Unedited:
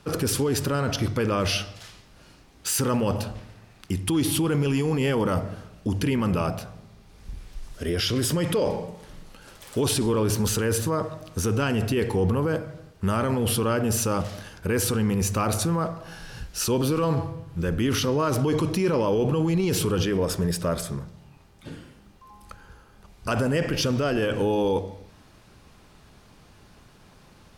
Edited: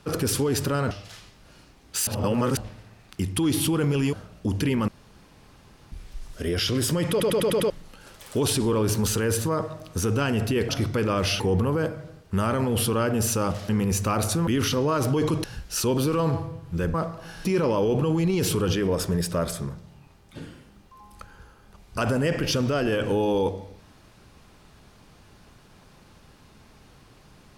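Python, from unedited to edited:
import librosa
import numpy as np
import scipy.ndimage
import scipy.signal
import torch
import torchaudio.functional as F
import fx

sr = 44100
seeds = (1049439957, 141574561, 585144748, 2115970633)

y = fx.edit(x, sr, fx.move(start_s=0.91, length_s=0.71, to_s=12.1),
    fx.reverse_span(start_s=2.78, length_s=0.5),
    fx.cut(start_s=4.84, length_s=0.7),
    fx.room_tone_fill(start_s=6.29, length_s=1.04),
    fx.stutter_over(start_s=8.51, slice_s=0.1, count=6),
    fx.cut(start_s=14.39, length_s=0.6),
    fx.swap(start_s=15.77, length_s=0.51, other_s=17.78, other_length_s=0.97), tone=tone)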